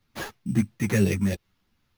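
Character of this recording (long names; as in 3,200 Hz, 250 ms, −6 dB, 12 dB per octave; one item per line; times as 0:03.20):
phaser sweep stages 4, 3.1 Hz, lowest notch 610–1,400 Hz
aliases and images of a low sample rate 8,300 Hz, jitter 0%
a shimmering, thickened sound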